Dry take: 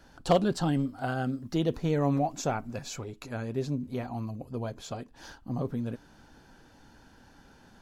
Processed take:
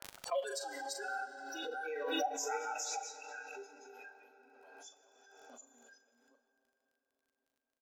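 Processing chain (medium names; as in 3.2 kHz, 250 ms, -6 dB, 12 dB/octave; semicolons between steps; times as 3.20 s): chunks repeated in reverse 374 ms, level -0.5 dB; spectral noise reduction 29 dB; level-controlled noise filter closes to 1.3 kHz, open at -29.5 dBFS; gate -49 dBFS, range -11 dB; steep high-pass 500 Hz 36 dB/octave; treble shelf 7.5 kHz +7 dB; crackle 27 per s -60 dBFS; doubling 40 ms -10 dB; reverberation RT60 5.4 s, pre-delay 15 ms, DRR 9.5 dB; swell ahead of each attack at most 31 dB/s; trim -4.5 dB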